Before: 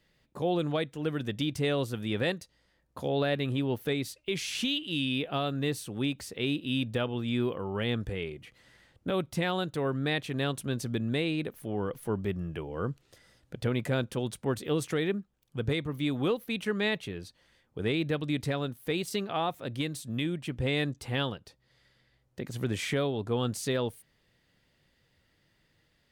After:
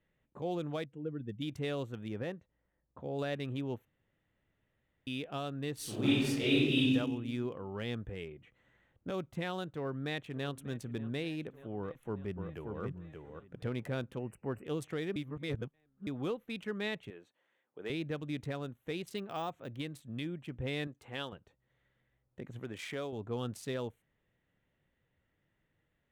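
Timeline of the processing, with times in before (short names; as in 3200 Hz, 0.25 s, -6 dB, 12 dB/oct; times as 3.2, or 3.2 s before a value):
0.85–1.42 spectral contrast raised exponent 1.6
2.08–3.19 tape spacing loss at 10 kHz 26 dB
3.85–5.07 room tone
5.75–6.8 reverb throw, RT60 1.3 s, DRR -11.5 dB
9.73–10.48 echo throw 0.59 s, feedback 75%, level -17 dB
11.79–12.81 echo throw 0.58 s, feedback 15%, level -4.5 dB
14.18–14.65 brick-wall FIR band-stop 3000–7600 Hz
15.16–16.07 reverse
17.1–17.9 HPF 360 Hz
19.17–19.8 careless resampling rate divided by 2×, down none, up hold
20.87–21.33 low shelf 200 Hz -12 dB
22.59–23.13 low shelf 200 Hz -11 dB
whole clip: Wiener smoothing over 9 samples; gain -7.5 dB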